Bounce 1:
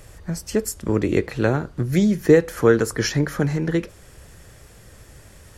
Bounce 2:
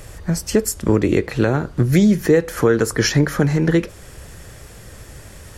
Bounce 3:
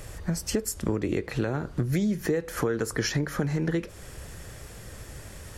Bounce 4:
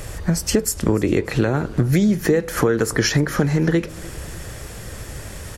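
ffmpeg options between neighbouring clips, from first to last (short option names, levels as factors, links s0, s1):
-af "alimiter=limit=0.266:level=0:latency=1:release=278,volume=2.24"
-af "acompressor=threshold=0.0794:ratio=3,volume=0.668"
-af "aecho=1:1:297|594|891:0.0891|0.0392|0.0173,volume=2.82"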